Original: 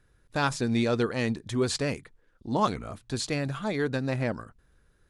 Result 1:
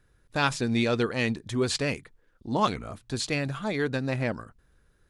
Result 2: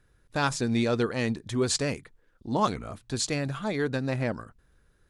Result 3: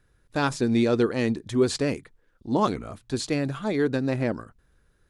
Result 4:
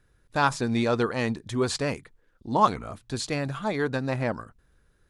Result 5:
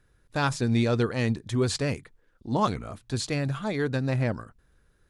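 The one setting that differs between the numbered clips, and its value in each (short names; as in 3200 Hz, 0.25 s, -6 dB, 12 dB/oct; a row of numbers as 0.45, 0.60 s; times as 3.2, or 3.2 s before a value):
dynamic EQ, frequency: 2700, 7000, 330, 980, 100 Hz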